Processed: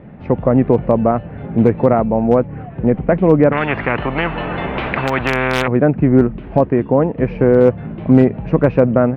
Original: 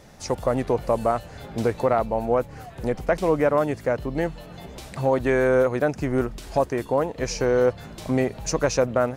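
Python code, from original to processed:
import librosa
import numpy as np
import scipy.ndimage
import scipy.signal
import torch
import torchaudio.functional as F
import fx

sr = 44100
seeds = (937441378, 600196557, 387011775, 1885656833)

y = scipy.signal.sosfilt(scipy.signal.butter(6, 2700.0, 'lowpass', fs=sr, output='sos'), x)
y = fx.peak_eq(y, sr, hz=190.0, db=14.0, octaves=2.4)
y = np.clip(y, -10.0 ** (-3.5 / 20.0), 10.0 ** (-3.5 / 20.0))
y = fx.spectral_comp(y, sr, ratio=4.0, at=(3.52, 5.68))
y = F.gain(torch.from_numpy(y), 2.0).numpy()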